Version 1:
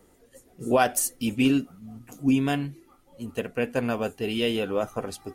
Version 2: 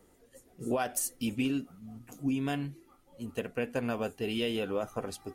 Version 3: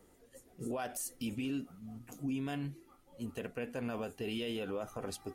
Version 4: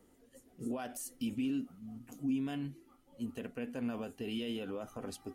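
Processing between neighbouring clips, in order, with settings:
compressor, threshold -23 dBFS, peak gain reduction 7.5 dB; gain -4 dB
limiter -28.5 dBFS, peak gain reduction 10.5 dB; gain -1 dB
small resonant body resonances 250/3000 Hz, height 8 dB; gain -3.5 dB

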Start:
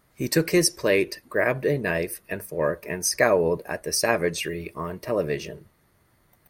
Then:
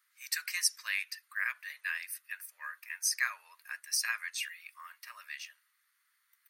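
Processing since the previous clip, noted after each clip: steep high-pass 1300 Hz 36 dB/oct; gain -6 dB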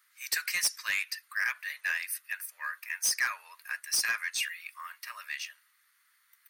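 soft clip -28 dBFS, distortion -10 dB; gain +6.5 dB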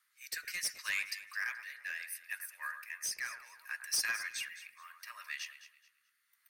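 rotary speaker horn 0.7 Hz; echo with dull and thin repeats by turns 0.107 s, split 2000 Hz, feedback 52%, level -8.5 dB; gain -4 dB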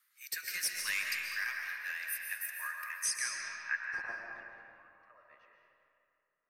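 low-pass sweep 14000 Hz -> 530 Hz, 2.93–4.23; reverb RT60 2.5 s, pre-delay 95 ms, DRR 0.5 dB

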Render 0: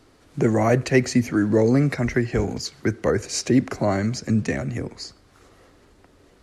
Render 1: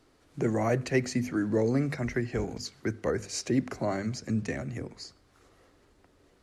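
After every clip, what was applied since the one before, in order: notches 50/100/150/200/250 Hz; gain -8 dB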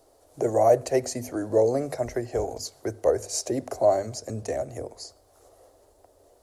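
EQ curve 100 Hz 0 dB, 180 Hz -13 dB, 640 Hz +14 dB, 1300 Hz -4 dB, 2300 Hz -8 dB, 11000 Hz +13 dB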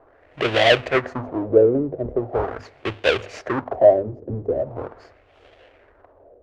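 half-waves squared off; LFO low-pass sine 0.41 Hz 360–3100 Hz; gain -1 dB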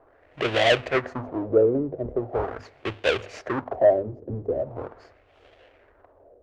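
soft clip -3 dBFS, distortion -23 dB; gain -3.5 dB

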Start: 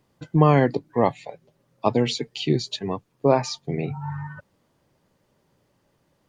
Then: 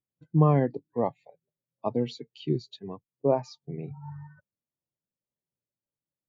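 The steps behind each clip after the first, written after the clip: spectral expander 1.5:1; gain -5.5 dB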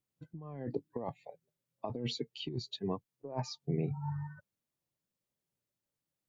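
negative-ratio compressor -34 dBFS, ratio -1; gain -3.5 dB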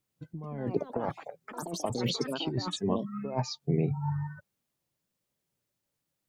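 echoes that change speed 0.281 s, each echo +6 st, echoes 3, each echo -6 dB; gain +6 dB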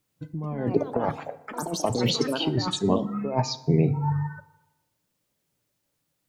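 FDN reverb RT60 1 s, low-frequency decay 0.9×, high-frequency decay 0.6×, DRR 12 dB; gain +6.5 dB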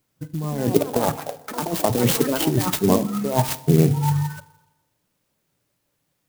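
clock jitter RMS 0.07 ms; gain +5 dB

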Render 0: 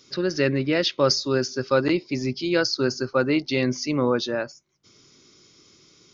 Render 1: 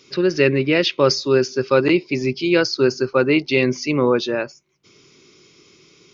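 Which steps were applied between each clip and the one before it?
fifteen-band EQ 160 Hz +5 dB, 400 Hz +8 dB, 1000 Hz +4 dB, 2500 Hz +10 dB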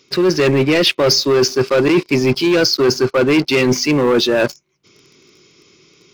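sample leveller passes 3; reverse; compressor 5:1, threshold -20 dBFS, peak gain reduction 12.5 dB; reverse; gain +7 dB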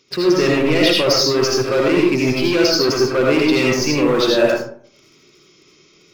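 digital reverb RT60 0.55 s, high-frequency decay 0.5×, pre-delay 40 ms, DRR -2.5 dB; gain -5 dB

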